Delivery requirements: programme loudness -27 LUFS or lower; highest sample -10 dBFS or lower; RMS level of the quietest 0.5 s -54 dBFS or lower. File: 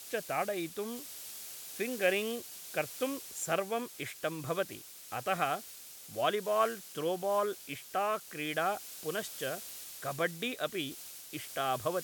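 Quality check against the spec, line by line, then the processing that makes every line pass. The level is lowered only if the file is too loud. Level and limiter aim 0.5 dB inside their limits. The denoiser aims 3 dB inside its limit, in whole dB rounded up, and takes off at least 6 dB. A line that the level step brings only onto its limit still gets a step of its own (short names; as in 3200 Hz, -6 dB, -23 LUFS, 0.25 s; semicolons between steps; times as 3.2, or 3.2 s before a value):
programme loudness -35.0 LUFS: OK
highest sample -16.0 dBFS: OK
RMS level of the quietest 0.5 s -50 dBFS: fail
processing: denoiser 7 dB, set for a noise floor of -50 dBFS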